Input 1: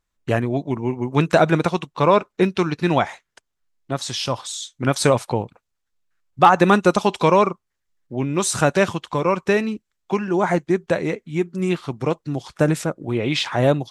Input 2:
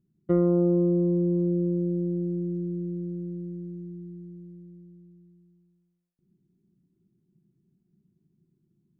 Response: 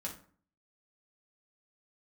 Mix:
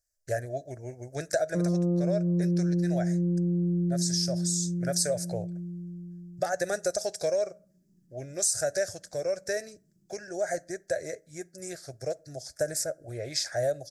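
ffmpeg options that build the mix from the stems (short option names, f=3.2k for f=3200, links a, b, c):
-filter_complex "[0:a]firequalizer=gain_entry='entry(110,0);entry(190,-19);entry(630,9);entry(990,-29);entry(1600,4);entry(2900,-20);entry(4900,14)':delay=0.05:min_phase=1,volume=-10.5dB,asplit=3[a][b][c];[b]volume=-17.5dB[d];[1:a]adelay=1250,volume=-2dB,asplit=2[e][f];[f]volume=-4.5dB[g];[c]apad=whole_len=451628[h];[e][h]sidechaincompress=threshold=-33dB:ratio=8:attack=16:release=331[i];[2:a]atrim=start_sample=2205[j];[d][g]amix=inputs=2:normalize=0[k];[k][j]afir=irnorm=-1:irlink=0[l];[a][i][l]amix=inputs=3:normalize=0,acompressor=threshold=-24dB:ratio=4"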